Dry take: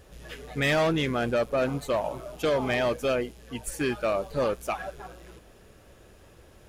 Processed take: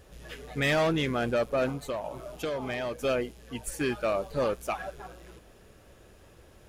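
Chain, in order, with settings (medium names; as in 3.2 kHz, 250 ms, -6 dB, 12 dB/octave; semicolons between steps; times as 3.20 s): 1.70–2.99 s: compression 2.5:1, threshold -31 dBFS, peak gain reduction 6.5 dB; trim -1.5 dB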